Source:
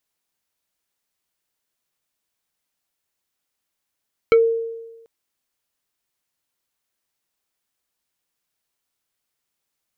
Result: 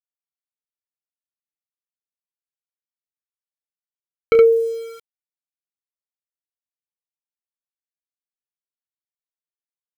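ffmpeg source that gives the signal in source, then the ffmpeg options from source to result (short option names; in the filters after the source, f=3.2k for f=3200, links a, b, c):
-f lavfi -i "aevalsrc='0.398*pow(10,-3*t/1.15)*sin(2*PI*457*t+0.74*pow(10,-3*t/0.12)*sin(2*PI*3.92*457*t))':d=0.74:s=44100"
-filter_complex "[0:a]asplit=2[a][b];[b]aecho=0:1:31|70:0.299|0.668[c];[a][c]amix=inputs=2:normalize=0,aeval=exprs='val(0)*gte(abs(val(0)),0.015)':c=same"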